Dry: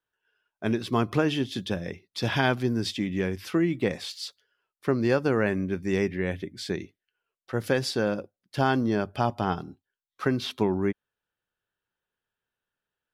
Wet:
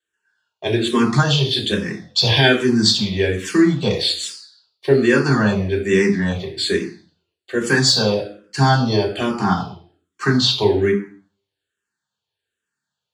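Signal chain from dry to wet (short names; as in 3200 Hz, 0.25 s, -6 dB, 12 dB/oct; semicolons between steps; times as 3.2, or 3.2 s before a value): band shelf 6300 Hz +15.5 dB; sample leveller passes 1; reverb RT60 0.50 s, pre-delay 3 ms, DRR -3 dB; endless phaser -1.2 Hz; gain -6 dB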